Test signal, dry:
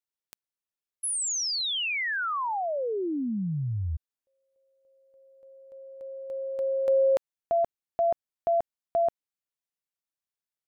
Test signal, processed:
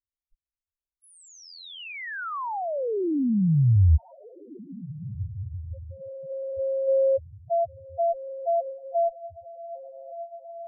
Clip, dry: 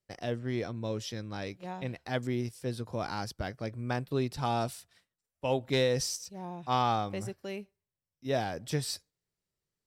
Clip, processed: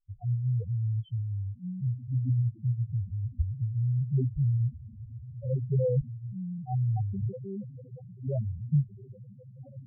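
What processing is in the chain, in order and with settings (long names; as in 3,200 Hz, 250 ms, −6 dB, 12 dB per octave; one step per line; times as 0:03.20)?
RIAA equalisation playback
feedback delay with all-pass diffusion 1,576 ms, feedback 45%, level −12 dB
spectral peaks only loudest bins 2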